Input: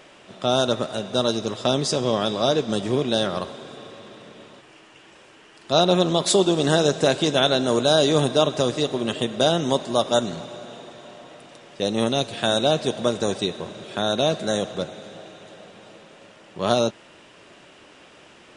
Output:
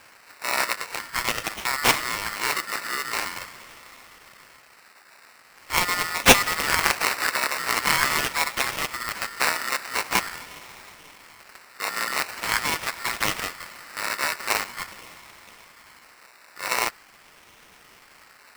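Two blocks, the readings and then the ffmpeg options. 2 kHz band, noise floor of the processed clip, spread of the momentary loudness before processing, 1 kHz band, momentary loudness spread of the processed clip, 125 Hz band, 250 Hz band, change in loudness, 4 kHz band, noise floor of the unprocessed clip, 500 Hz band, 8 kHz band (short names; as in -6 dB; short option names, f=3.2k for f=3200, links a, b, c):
+9.0 dB, -53 dBFS, 16 LU, +0.5 dB, 15 LU, -13.0 dB, -13.5 dB, -2.0 dB, -3.0 dB, -50 dBFS, -13.5 dB, +4.0 dB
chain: -af "highshelf=f=4.5k:t=q:w=3:g=13.5,acrusher=samples=21:mix=1:aa=0.000001:lfo=1:lforange=12.6:lforate=0.44,aeval=exprs='val(0)*sgn(sin(2*PI*1600*n/s))':c=same,volume=-7.5dB"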